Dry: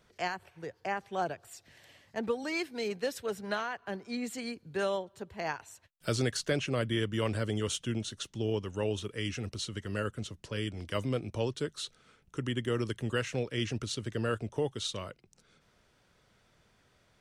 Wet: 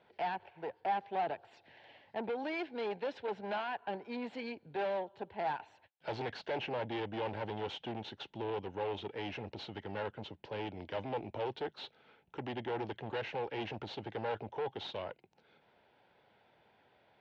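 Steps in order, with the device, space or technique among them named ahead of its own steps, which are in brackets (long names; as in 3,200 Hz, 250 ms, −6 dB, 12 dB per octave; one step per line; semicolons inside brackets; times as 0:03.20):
guitar amplifier (tube saturation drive 37 dB, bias 0.55; bass and treble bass −10 dB, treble −12 dB; loudspeaker in its box 82–4,100 Hz, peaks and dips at 840 Hz +9 dB, 1,200 Hz −10 dB, 1,900 Hz −3 dB)
level +5 dB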